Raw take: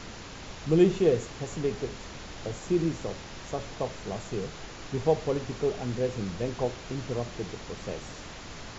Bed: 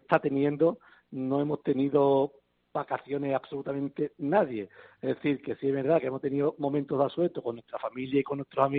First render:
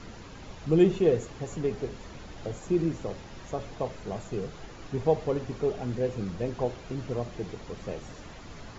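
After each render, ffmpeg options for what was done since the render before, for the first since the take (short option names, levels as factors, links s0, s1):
-af "afftdn=nr=8:nf=-43"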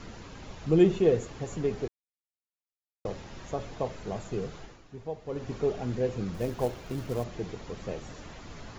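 -filter_complex "[0:a]asettb=1/sr,asplit=3[s0][s1][s2];[s0]atrim=end=6.344[s3];[s1]atrim=start=6.34:end=7.24,asetpts=PTS-STARTPTS,afade=t=in:d=0.004:c=qsin,afade=t=out:st=0.896:d=0.004:c=qsin,acrusher=bits=5:mode=log:mix=0:aa=0.000001[s4];[s2]atrim=start=7.236[s5];[s3][s4]acrossfade=d=0.004:c1=hsin:c2=qsin[s6];[s6][s5]acrossfade=d=0.004:c1=qsin:c2=hsin,asplit=5[s7][s8][s9][s10][s11];[s7]atrim=end=1.88,asetpts=PTS-STARTPTS,afade=t=out:st=1.876:d=0.004:c=hsin[s12];[s8]atrim=start=1.88:end=3.05,asetpts=PTS-STARTPTS,volume=0[s13];[s9]atrim=start=3.05:end=4.83,asetpts=PTS-STARTPTS,afade=t=in:d=0.004:c=hsin,afade=t=out:st=1.5:d=0.28:silence=0.237137[s14];[s10]atrim=start=4.83:end=5.24,asetpts=PTS-STARTPTS,volume=0.237[s15];[s11]atrim=start=5.24,asetpts=PTS-STARTPTS,afade=t=in:d=0.28:silence=0.237137[s16];[s12][s13][s14][s15][s16]concat=n=5:v=0:a=1"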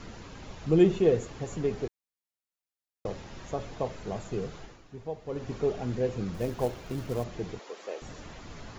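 -filter_complex "[0:a]asettb=1/sr,asplit=3[s0][s1][s2];[s0]atrim=end=7.594[s3];[s1]atrim=start=7.59:end=8.02,asetpts=PTS-STARTPTS,afade=t=in:d=0.004:c=qsin,afade=t=out:st=0.426:d=0.004:c=qsin,highpass=f=370:w=0.5412,highpass=f=370:w=1.3066[s4];[s2]atrim=start=8.016[s5];[s3][s4]acrossfade=d=0.004:c1=hsin:c2=qsin[s6];[s6][s5]acrossfade=d=0.004:c1=qsin:c2=hsin"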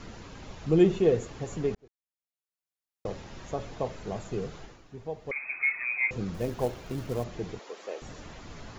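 -filter_complex "[0:a]asettb=1/sr,asplit=3[s0][s1][s2];[s0]atrim=end=5.314[s3];[s1]atrim=start=5.31:end=6.11,asetpts=PTS-STARTPTS,afade=t=in:d=0.004:c=qsin,afade=t=out:st=0.796:d=0.004:c=qsin,lowpass=f=2200:t=q:w=0.5098,lowpass=f=2200:t=q:w=0.6013,lowpass=f=2200:t=q:w=0.9,lowpass=f=2200:t=q:w=2.563,afreqshift=-2600[s4];[s2]atrim=start=6.106[s5];[s3][s4]acrossfade=d=0.004:c1=hsin:c2=qsin[s6];[s6][s5]acrossfade=d=0.004:c1=qsin:c2=hsin,asplit=2[s7][s8];[s7]atrim=end=1.75,asetpts=PTS-STARTPTS,afade=t=out:st=1.746:d=0.004:c=hsin[s9];[s8]atrim=start=1.75,asetpts=PTS-STARTPTS,afade=t=in:d=1.34[s10];[s9][s10]concat=n=2:v=0:a=1"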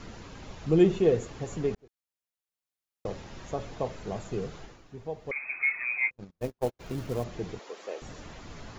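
-filter_complex "[0:a]asplit=3[s0][s1][s2];[s0]afade=t=out:st=6:d=0.02[s3];[s1]agate=range=0.00501:threshold=0.0316:ratio=16:release=100:detection=peak,afade=t=in:st=6:d=0.02,afade=t=out:st=6.79:d=0.02[s4];[s2]afade=t=in:st=6.79:d=0.02[s5];[s3][s4][s5]amix=inputs=3:normalize=0"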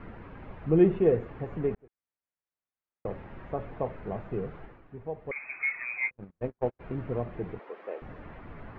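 -af "lowpass=f=2200:w=0.5412,lowpass=f=2200:w=1.3066"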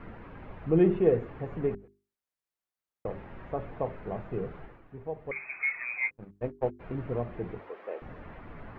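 -af "bandreject=f=50:t=h:w=6,bandreject=f=100:t=h:w=6,bandreject=f=150:t=h:w=6,bandreject=f=200:t=h:w=6,bandreject=f=250:t=h:w=6,bandreject=f=300:t=h:w=6,bandreject=f=350:t=h:w=6,bandreject=f=400:t=h:w=6"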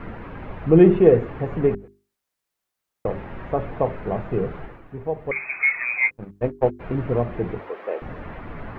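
-af "volume=3.16,alimiter=limit=0.708:level=0:latency=1"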